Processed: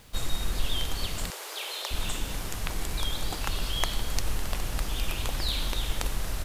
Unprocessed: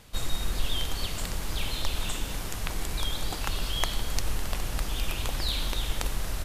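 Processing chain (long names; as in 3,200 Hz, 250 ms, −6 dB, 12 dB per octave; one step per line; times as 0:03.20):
0:01.30–0:01.91: Butterworth high-pass 380 Hz 48 dB per octave
bit-depth reduction 10 bits, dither none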